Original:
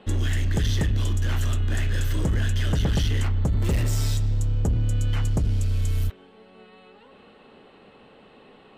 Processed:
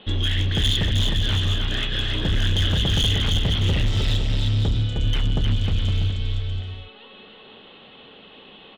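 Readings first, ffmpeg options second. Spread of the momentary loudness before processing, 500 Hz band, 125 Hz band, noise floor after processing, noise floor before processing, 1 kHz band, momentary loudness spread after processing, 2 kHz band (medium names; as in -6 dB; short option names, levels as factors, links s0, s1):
2 LU, +1.5 dB, +1.0 dB, -47 dBFS, -52 dBFS, +2.5 dB, 6 LU, +5.0 dB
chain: -af "lowpass=f=3400:t=q:w=6.6,aecho=1:1:310|511.5|642.5|727.6|782.9:0.631|0.398|0.251|0.158|0.1,asoftclip=type=hard:threshold=0.158"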